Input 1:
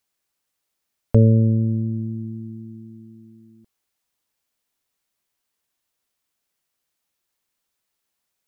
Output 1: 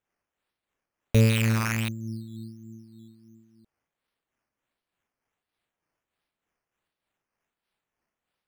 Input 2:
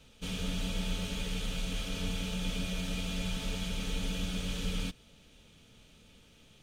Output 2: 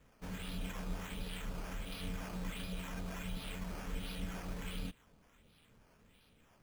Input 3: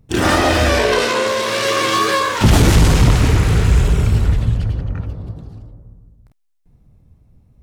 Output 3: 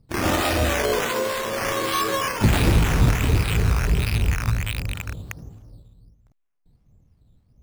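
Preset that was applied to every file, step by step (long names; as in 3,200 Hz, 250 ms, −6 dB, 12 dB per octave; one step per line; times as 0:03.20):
loose part that buzzes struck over −20 dBFS, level −10 dBFS
two-band tremolo in antiphase 3.3 Hz, depth 50%, crossover 950 Hz
sample-and-hold swept by an LFO 9×, swing 60% 1.4 Hz
level −5 dB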